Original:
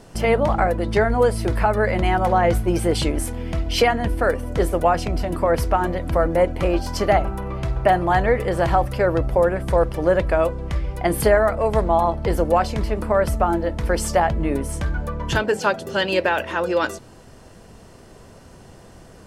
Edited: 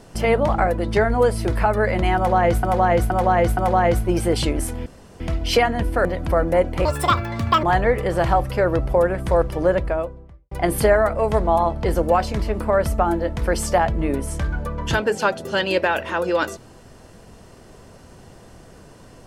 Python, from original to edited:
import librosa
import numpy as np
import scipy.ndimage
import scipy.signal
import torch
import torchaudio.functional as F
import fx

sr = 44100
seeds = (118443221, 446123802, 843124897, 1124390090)

y = fx.studio_fade_out(x, sr, start_s=9.97, length_s=0.96)
y = fx.edit(y, sr, fx.repeat(start_s=2.16, length_s=0.47, count=4),
    fx.insert_room_tone(at_s=3.45, length_s=0.34),
    fx.cut(start_s=4.3, length_s=1.58),
    fx.speed_span(start_s=6.68, length_s=1.37, speed=1.75), tone=tone)